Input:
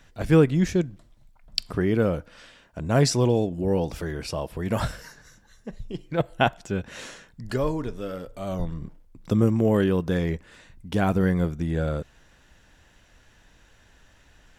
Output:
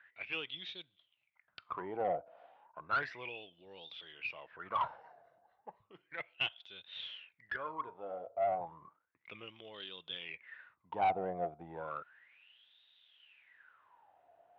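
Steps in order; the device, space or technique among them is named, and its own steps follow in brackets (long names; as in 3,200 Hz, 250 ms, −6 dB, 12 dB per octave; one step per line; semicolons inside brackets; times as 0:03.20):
wah-wah guitar rig (LFO wah 0.33 Hz 680–3,700 Hz, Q 15; tube saturation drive 37 dB, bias 0.2; loudspeaker in its box 79–3,500 Hz, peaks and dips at 96 Hz +3 dB, 230 Hz −7 dB, 1,700 Hz −5 dB)
level +12 dB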